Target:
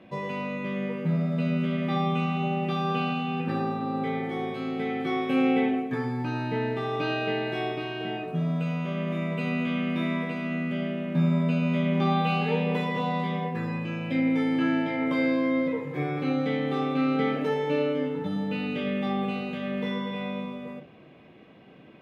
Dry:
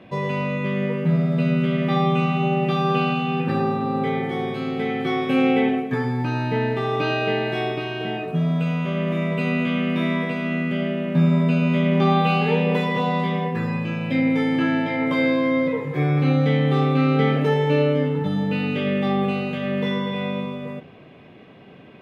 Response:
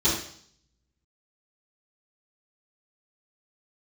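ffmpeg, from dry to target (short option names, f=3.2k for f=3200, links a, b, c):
-filter_complex "[0:a]asplit=2[a][b];[1:a]atrim=start_sample=2205,atrim=end_sample=3528[c];[b][c]afir=irnorm=-1:irlink=0,volume=-25.5dB[d];[a][d]amix=inputs=2:normalize=0,volume=-6dB"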